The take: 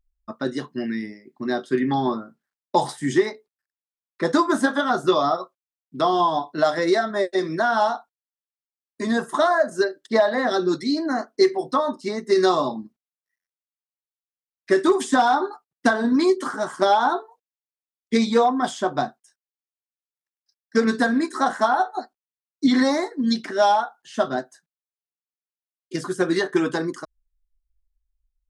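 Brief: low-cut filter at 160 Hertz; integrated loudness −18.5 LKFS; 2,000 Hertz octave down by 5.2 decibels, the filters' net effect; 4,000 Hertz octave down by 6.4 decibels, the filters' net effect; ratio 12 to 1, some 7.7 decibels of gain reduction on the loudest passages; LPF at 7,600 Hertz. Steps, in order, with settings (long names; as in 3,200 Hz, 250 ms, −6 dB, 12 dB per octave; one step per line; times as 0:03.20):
high-pass filter 160 Hz
low-pass filter 7,600 Hz
parametric band 2,000 Hz −6.5 dB
parametric band 4,000 Hz −5.5 dB
downward compressor 12 to 1, threshold −21 dBFS
level +9.5 dB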